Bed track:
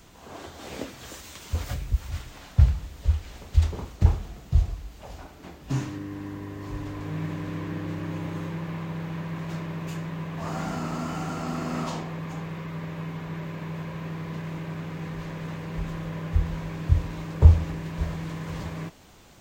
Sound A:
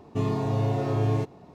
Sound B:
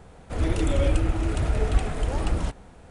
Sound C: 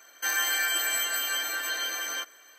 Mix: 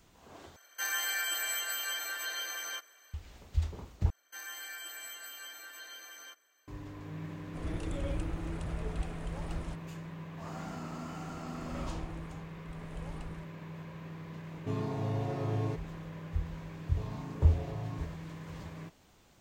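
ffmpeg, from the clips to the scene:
-filter_complex "[3:a]asplit=2[s0][s1];[2:a]asplit=2[s2][s3];[1:a]asplit=2[s4][s5];[0:a]volume=0.299[s6];[s0]highpass=360[s7];[s3]tremolo=f=0.94:d=0.88[s8];[s5]asplit=2[s9][s10];[s10]afreqshift=1.4[s11];[s9][s11]amix=inputs=2:normalize=1[s12];[s6]asplit=3[s13][s14][s15];[s13]atrim=end=0.564[s16];[s7]atrim=end=2.58,asetpts=PTS-STARTPTS,volume=0.473[s17];[s14]atrim=start=3.136:end=4.104[s18];[s1]atrim=end=2.58,asetpts=PTS-STARTPTS,volume=0.141[s19];[s15]atrim=start=6.676[s20];[s2]atrim=end=2.9,asetpts=PTS-STARTPTS,volume=0.2,afade=t=in:d=0.004:c=hsin,afade=t=out:st=2.896:d=0.004:c=hsin,adelay=7240[s21];[s8]atrim=end=2.9,asetpts=PTS-STARTPTS,volume=0.133,afade=t=in:d=0.004:c=hsin,afade=t=out:st=2.896:d=0.004:c=hsin,adelay=10940[s22];[s4]atrim=end=1.54,asetpts=PTS-STARTPTS,volume=0.376,afade=t=in:d=0.004:c=hsin,afade=t=out:st=1.536:d=0.004:c=hsin,adelay=14510[s23];[s12]atrim=end=1.54,asetpts=PTS-STARTPTS,volume=0.224,afade=t=in:d=0.004:c=hsin,afade=t=out:st=1.536:d=0.004:c=hsin,adelay=16810[s24];[s16][s17]acrossfade=d=0.004:c1=hsin:c2=hsin[s25];[s25][s18]acrossfade=d=0.004:c1=hsin:c2=hsin[s26];[s26][s19]acrossfade=d=0.004:c1=hsin:c2=hsin[s27];[s27][s20]acrossfade=d=0.004:c1=hsin:c2=hsin[s28];[s28][s21][s22][s23][s24]amix=inputs=5:normalize=0"

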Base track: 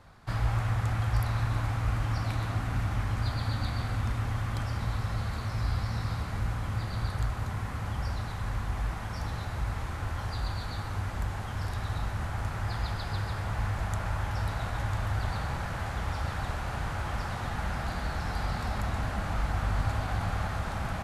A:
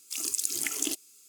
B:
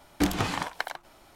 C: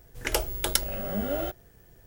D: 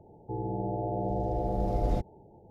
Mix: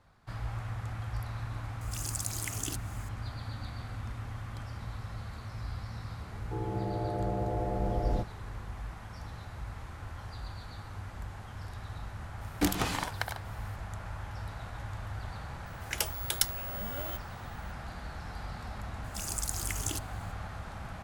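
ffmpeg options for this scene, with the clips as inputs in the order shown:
-filter_complex "[1:a]asplit=2[s0][s1];[0:a]volume=0.355[s2];[s0]acompressor=mode=upward:threshold=0.0112:ratio=2.5:attack=3.2:release=140:knee=2.83:detection=peak[s3];[2:a]highshelf=f=8600:g=10[s4];[3:a]tiltshelf=f=890:g=-7[s5];[s3]atrim=end=1.28,asetpts=PTS-STARTPTS,volume=0.447,afade=t=in:d=0.004:c=hsin,afade=t=out:st=1.276:d=0.004:c=hsin,adelay=1810[s6];[4:a]atrim=end=2.5,asetpts=PTS-STARTPTS,volume=0.75,afade=t=in:d=0.004:c=hsin,afade=t=out:st=2.496:d=0.004:c=hsin,adelay=6220[s7];[s4]atrim=end=1.35,asetpts=PTS-STARTPTS,volume=0.668,afade=t=in:d=0.004:c=hsin,afade=t=out:st=1.346:d=0.004:c=hsin,adelay=12410[s8];[s5]atrim=end=2.06,asetpts=PTS-STARTPTS,volume=0.335,afade=t=in:d=0.004:c=hsin,afade=t=out:st=2.056:d=0.004:c=hsin,adelay=15660[s9];[s1]atrim=end=1.28,asetpts=PTS-STARTPTS,volume=0.501,afade=t=in:d=0.004:c=hsin,afade=t=out:st=1.276:d=0.004:c=hsin,adelay=19040[s10];[s2][s6][s7][s8][s9][s10]amix=inputs=6:normalize=0"

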